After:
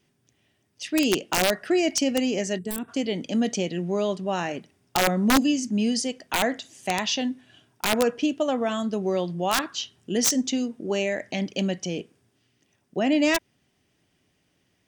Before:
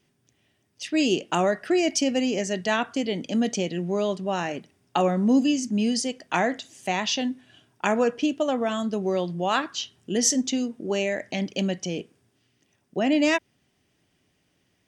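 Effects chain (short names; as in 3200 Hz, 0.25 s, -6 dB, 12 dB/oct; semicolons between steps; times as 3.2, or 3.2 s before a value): wrapped overs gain 12.5 dB; spectral gain 2.58–2.89, 460–7400 Hz -17 dB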